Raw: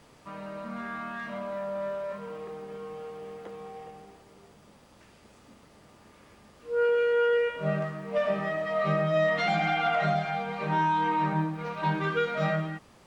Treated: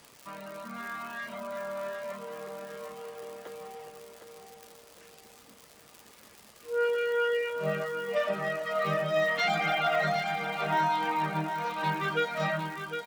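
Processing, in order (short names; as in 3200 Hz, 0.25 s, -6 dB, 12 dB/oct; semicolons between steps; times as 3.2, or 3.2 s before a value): reverb removal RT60 0.68 s; crackle 140/s -42 dBFS; tilt +2 dB/oct; feedback echo 0.758 s, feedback 40%, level -7.5 dB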